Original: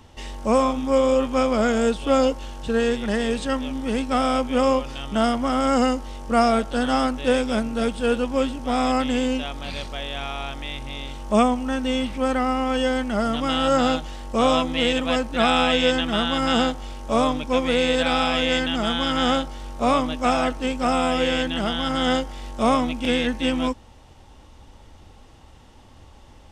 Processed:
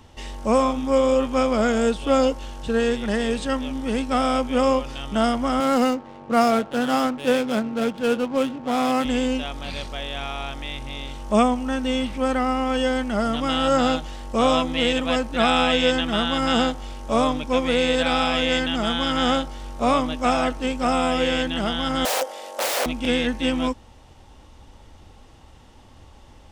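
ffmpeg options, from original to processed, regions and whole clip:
-filter_complex "[0:a]asettb=1/sr,asplit=3[s0][s1][s2];[s0]atrim=end=5.604[s3];[s1]atrim=start=5.6:end=9.05,asetpts=PTS-STARTPTS,afade=t=in:d=0.004:c=qsin,afade=t=out:st=3.446:d=0.004:c=qsin,highpass=f=100:w=0.5412,highpass=f=100:w=1.3066,adynamicsmooth=sensitivity=8:basefreq=670[s4];[s2]atrim=start=9.046[s5];[s3][s4]acrossfade=d=0.004:c1=hsin:c2=qsin[s6];[s6][s5]acrossfade=d=0.004:c1=qsin:c2=hsin,asettb=1/sr,asplit=3[s7][s8][s9];[s7]atrim=end=22.054[s10];[s8]atrim=start=22.05:end=22.86,asetpts=PTS-STARTPTS,afade=t=in:d=0.004:c=qsin,afade=t=out:st=0.806:d=0.004:c=qsin,highshelf=f=7700:g=9,aeval=exprs='(mod(11.2*val(0)+1,2)-1)/11.2':c=same,highpass=f=560:t=q:w=4.5[s11];[s9]atrim=start=22.856[s12];[s10][s11]acrossfade=d=0.004:c1=hsin:c2=qsin[s13];[s13][s12]acrossfade=d=0.004:c1=qsin:c2=hsin"

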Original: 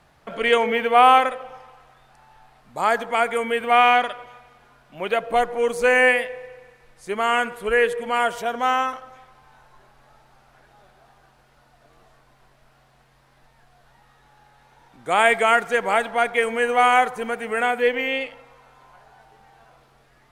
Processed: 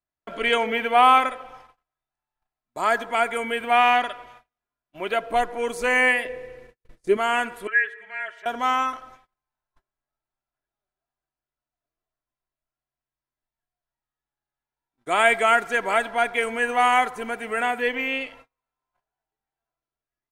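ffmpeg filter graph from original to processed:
-filter_complex "[0:a]asettb=1/sr,asplit=3[s0][s1][s2];[s0]atrim=end=6.254[s3];[s1]atrim=start=6.25:end=7.17,asetpts=PTS-STARTPTS,afade=t=in:d=0.004:c=qsin,afade=t=out:st=0.916:d=0.004:c=qsin,lowshelf=f=600:t=q:w=1.5:g=7.5,agate=range=0.0224:threshold=0.00708:ratio=3:release=100:detection=peak[s4];[s2]atrim=start=7.166[s5];[s3][s4]acrossfade=d=0.004:c1=hsin:c2=qsin[s6];[s6][s5]acrossfade=d=0.004:c1=qsin:c2=hsin,asettb=1/sr,asplit=3[s7][s8][s9];[s7]atrim=end=7.674[s10];[s8]atrim=start=7.67:end=8.46,asetpts=PTS-STARTPTS,afade=t=in:d=0.004:c=qsin,afade=t=out:st=0.786:d=0.004:c=qsin,bandpass=f=1800:t=q:w=4.5,afreqshift=-25,aecho=1:1:4.7:0.9,atrim=end_sample=34839[s11];[s9]atrim=start=8.456[s12];[s10][s11]acrossfade=d=0.004:c1=hsin:c2=qsin[s13];[s13][s12]acrossfade=d=0.004:c1=qsin:c2=hsin,equalizer=f=710:w=1.5:g=-2.5,aecho=1:1:3:0.42,agate=range=0.0178:threshold=0.00562:ratio=16:detection=peak,volume=0.841"

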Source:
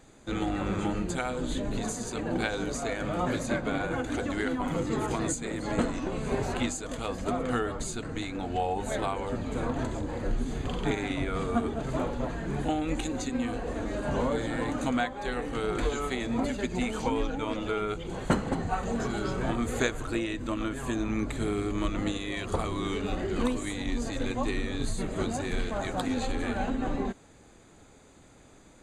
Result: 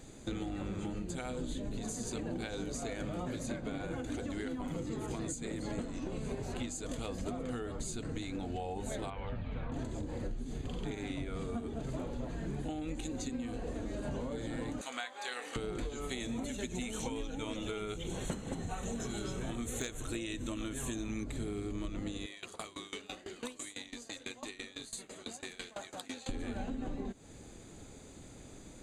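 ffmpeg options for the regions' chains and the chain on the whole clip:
-filter_complex "[0:a]asettb=1/sr,asplit=3[s0][s1][s2];[s0]atrim=end=9.104[s3];[s1]atrim=start=9.1:end=9.72,asetpts=PTS-STARTPTS,afade=t=in:d=0.004:c=qsin,afade=t=out:st=0.616:d=0.004:c=qsin,lowpass=f=3200:w=0.5412,lowpass=f=3200:w=1.3066,equalizer=f=330:w=1:g=-13.5[s4];[s2]atrim=start=9.716[s5];[s3][s4]acrossfade=d=0.004:c1=hsin:c2=qsin[s6];[s6][s5]acrossfade=d=0.004:c1=qsin:c2=hsin,asettb=1/sr,asplit=3[s7][s8][s9];[s7]atrim=end=14.814[s10];[s8]atrim=start=14.81:end=15.56,asetpts=PTS-STARTPTS,afade=t=in:d=0.004:c=qsin,afade=t=out:st=0.746:d=0.004:c=qsin,highpass=990,asplit=2[s11][s12];[s12]adelay=24,volume=0.266[s13];[s11][s13]amix=inputs=2:normalize=0,atrim=end_sample=33075[s14];[s9]atrim=start=15.556[s15];[s10][s14]acrossfade=d=0.004:c1=hsin:c2=qsin[s16];[s16][s15]acrossfade=d=0.004:c1=qsin:c2=hsin,asettb=1/sr,asplit=3[s17][s18][s19];[s17]atrim=end=16.094[s20];[s18]atrim=start=16.09:end=21.24,asetpts=PTS-STARTPTS,afade=t=in:d=0.004:c=qsin,afade=t=out:st=5.146:d=0.004:c=qsin,asuperstop=centerf=4700:order=4:qfactor=5.5,highshelf=f=2600:g=9.5,aeval=exprs='clip(val(0),-1,0.158)':c=same[s21];[s19]atrim=start=21.236[s22];[s20][s21]acrossfade=d=0.004:c1=hsin:c2=qsin[s23];[s23][s22]acrossfade=d=0.004:c1=qsin:c2=hsin,asettb=1/sr,asplit=3[s24][s25][s26];[s24]atrim=end=22.264[s27];[s25]atrim=start=22.26:end=26.29,asetpts=PTS-STARTPTS,afade=t=in:d=0.004:c=qsin,afade=t=out:st=4.026:d=0.004:c=qsin,highpass=f=1400:p=1,aeval=exprs='val(0)*pow(10,-21*if(lt(mod(6*n/s,1),2*abs(6)/1000),1-mod(6*n/s,1)/(2*abs(6)/1000),(mod(6*n/s,1)-2*abs(6)/1000)/(1-2*abs(6)/1000))/20)':c=same[s28];[s26]atrim=start=26.286[s29];[s27][s28]acrossfade=d=0.004:c1=hsin:c2=qsin[s30];[s30][s29]acrossfade=d=0.004:c1=qsin:c2=hsin,equalizer=f=1200:t=o:w=2.1:g=-8,acompressor=threshold=0.01:ratio=10,volume=1.78"

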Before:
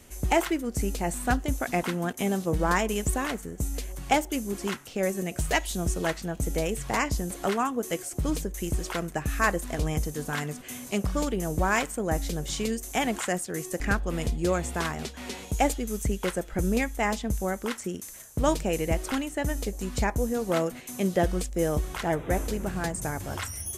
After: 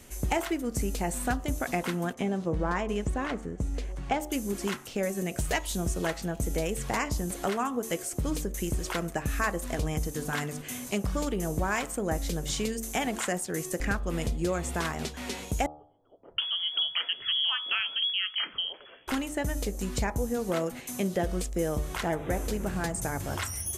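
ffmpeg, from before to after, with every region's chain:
-filter_complex "[0:a]asettb=1/sr,asplit=3[s0][s1][s2];[s0]atrim=end=2.144[s3];[s1]atrim=start=2.14:end=4.2,asetpts=PTS-STARTPTS,afade=t=in:d=0.004:c=qsin,afade=t=out:st=2.056:d=0.004:c=qsin,lowpass=9700,aemphasis=mode=reproduction:type=75kf[s4];[s2]atrim=start=4.196[s5];[s3][s4]acrossfade=d=0.004:c1=hsin:c2=qsin[s6];[s6][s5]acrossfade=d=0.004:c1=qsin:c2=hsin,asettb=1/sr,asplit=3[s7][s8][s9];[s7]atrim=end=15.664[s10];[s8]atrim=start=15.66:end=19.08,asetpts=PTS-STARTPTS,afade=t=in:d=0.004:c=qsin,afade=t=out:st=3.416:d=0.004:c=qsin,lowpass=f=2900:t=q:w=0.5098,lowpass=f=2900:t=q:w=0.6013,lowpass=f=2900:t=q:w=0.9,lowpass=f=2900:t=q:w=2.563,afreqshift=-3400,acrossover=split=170|580[s11][s12][s13];[s11]adelay=80[s14];[s13]adelay=720[s15];[s14][s12][s15]amix=inputs=3:normalize=0,atrim=end_sample=150822[s16];[s9]atrim=start=19.076[s17];[s10][s16]acrossfade=d=0.004:c1=hsin:c2=qsin[s18];[s18][s17]acrossfade=d=0.004:c1=qsin:c2=hsin,acompressor=threshold=0.0398:ratio=2.5,bandreject=f=74.91:t=h:w=4,bandreject=f=149.82:t=h:w=4,bandreject=f=224.73:t=h:w=4,bandreject=f=299.64:t=h:w=4,bandreject=f=374.55:t=h:w=4,bandreject=f=449.46:t=h:w=4,bandreject=f=524.37:t=h:w=4,bandreject=f=599.28:t=h:w=4,bandreject=f=674.19:t=h:w=4,bandreject=f=749.1:t=h:w=4,bandreject=f=824.01:t=h:w=4,bandreject=f=898.92:t=h:w=4,bandreject=f=973.83:t=h:w=4,bandreject=f=1048.74:t=h:w=4,bandreject=f=1123.65:t=h:w=4,bandreject=f=1198.56:t=h:w=4,bandreject=f=1273.47:t=h:w=4,bandreject=f=1348.38:t=h:w=4,volume=1.19"

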